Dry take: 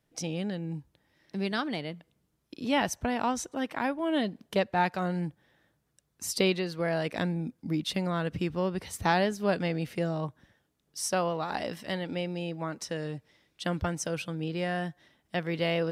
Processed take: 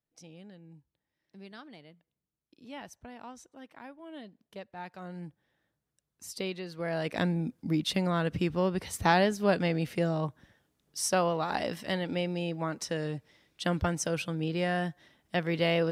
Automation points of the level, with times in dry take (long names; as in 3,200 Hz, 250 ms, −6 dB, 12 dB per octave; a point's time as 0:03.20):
0:04.75 −17 dB
0:05.23 −9.5 dB
0:06.52 −9.5 dB
0:07.23 +1.5 dB